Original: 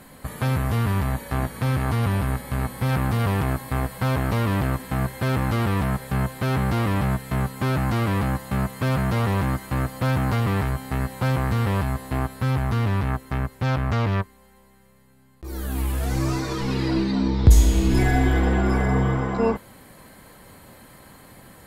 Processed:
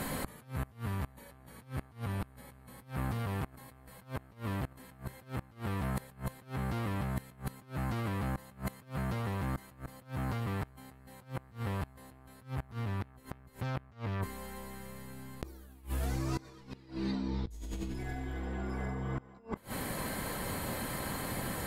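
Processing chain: negative-ratio compressor -33 dBFS, ratio -1; flipped gate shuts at -23 dBFS, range -24 dB

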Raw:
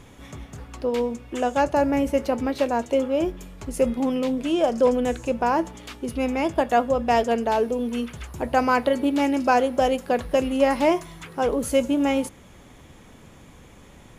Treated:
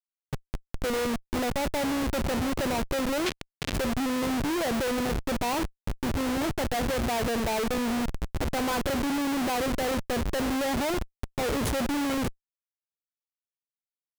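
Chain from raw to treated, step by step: Schmitt trigger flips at -29 dBFS; 3.26–3.73 weighting filter D; gain -3.5 dB

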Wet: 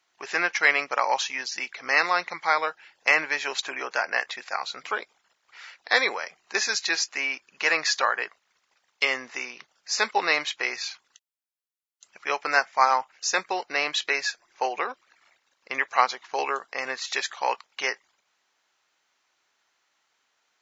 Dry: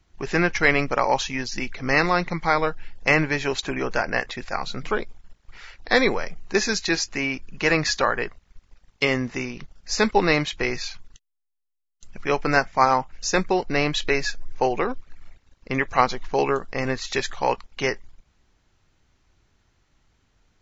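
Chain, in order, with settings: HPF 760 Hz 12 dB/oct

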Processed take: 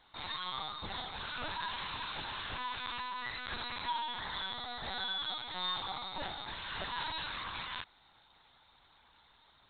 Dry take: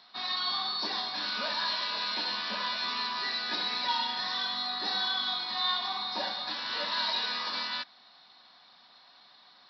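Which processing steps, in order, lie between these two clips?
HPF 80 Hz 24 dB/oct; LPC vocoder at 8 kHz pitch kept; gain -5 dB

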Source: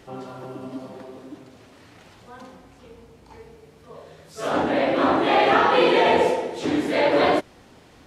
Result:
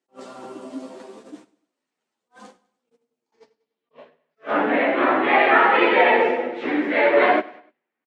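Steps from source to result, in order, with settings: HPF 200 Hz 24 dB/oct; gate -42 dBFS, range -33 dB; low-pass sweep 8300 Hz -> 2100 Hz, 3.13–4.17; chorus voices 4, 0.29 Hz, delay 11 ms, depth 2.9 ms; on a send: feedback echo 99 ms, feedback 43%, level -21 dB; on the sum: attack slew limiter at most 360 dB/s; gain +3 dB

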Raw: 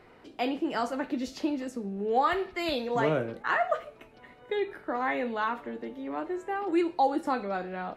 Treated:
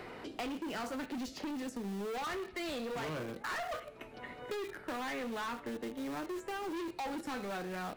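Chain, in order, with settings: in parallel at -12 dB: requantised 6-bit, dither none; on the sum: dynamic EQ 690 Hz, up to -4 dB, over -38 dBFS, Q 0.99; overloaded stage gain 32.5 dB; three-band squash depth 70%; gain -4 dB

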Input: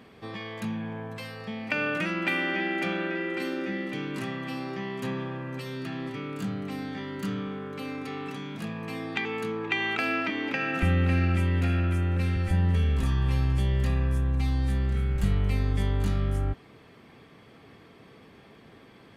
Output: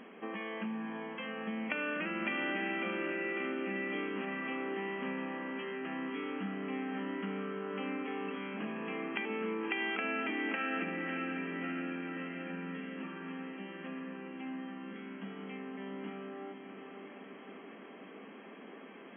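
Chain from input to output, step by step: compressor 2.5:1, threshold -38 dBFS, peak gain reduction 12.5 dB; brick-wall FIR band-pass 180–3300 Hz; diffused feedback echo 0.601 s, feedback 64%, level -7 dB; gain +1 dB

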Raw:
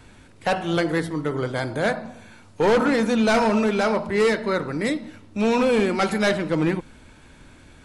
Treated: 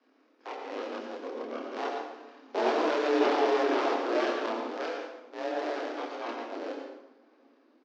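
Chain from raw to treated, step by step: cycle switcher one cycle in 2, inverted; Doppler pass-by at 3.3, 8 m/s, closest 4.8 m; LPF 8900 Hz 24 dB/oct; de-hum 104.5 Hz, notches 2; limiter -18 dBFS, peak gain reduction 7.5 dB; frequency shift +390 Hz; pitch shift -9 st; chorus voices 6, 0.56 Hz, delay 28 ms, depth 2.2 ms; tape echo 0.353 s, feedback 62%, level -24 dB, low-pass 1400 Hz; plate-style reverb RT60 0.82 s, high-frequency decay 0.85×, pre-delay 75 ms, DRR 3 dB

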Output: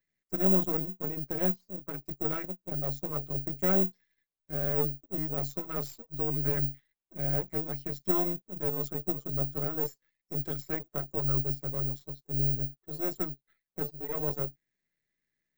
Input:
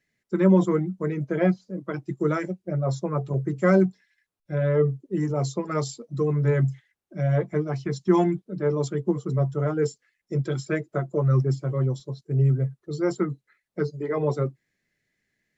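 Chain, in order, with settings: half-wave gain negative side -12 dB; careless resampling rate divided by 2×, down filtered, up zero stuff; gain -8 dB

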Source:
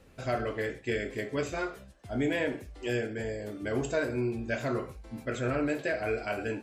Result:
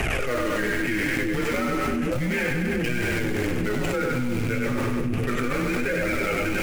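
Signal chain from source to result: delta modulation 64 kbps, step -40 dBFS; HPF 50 Hz 24 dB/oct; resonant high shelf 3300 Hz -7 dB, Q 3; notch 1100 Hz, Q 7.2; de-hum 168.9 Hz, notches 12; frequency shift -120 Hz; in parallel at -8.5 dB: bit-crush 5-bit; on the sum: flange 0.33 Hz, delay 1 ms, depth 8.3 ms, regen +35%; on a send: split-band echo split 400 Hz, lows 0.344 s, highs 99 ms, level -3.5 dB; on the sum: fast leveller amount 100%

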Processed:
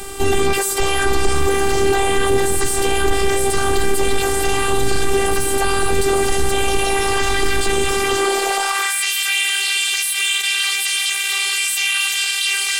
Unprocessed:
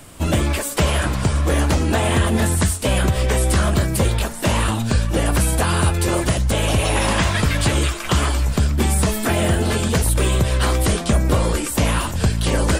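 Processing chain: diffused feedback echo 0.958 s, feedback 74%, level -10.5 dB; sine folder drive 4 dB, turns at -4.5 dBFS; high-pass sweep 130 Hz -> 2600 Hz, 7.9–9.09; robotiser 394 Hz; limiter -9.5 dBFS, peak gain reduction 13.5 dB; gain +6.5 dB

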